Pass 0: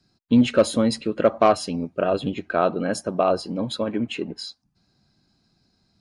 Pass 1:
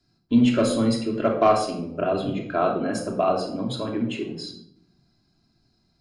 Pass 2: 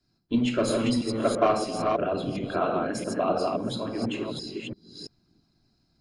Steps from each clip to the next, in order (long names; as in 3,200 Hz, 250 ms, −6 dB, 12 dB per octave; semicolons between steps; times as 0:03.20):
convolution reverb RT60 0.70 s, pre-delay 3 ms, DRR −0.5 dB; level −5 dB
delay that plays each chunk backwards 338 ms, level −2.5 dB; harmonic and percussive parts rebalanced percussive +7 dB; level −8 dB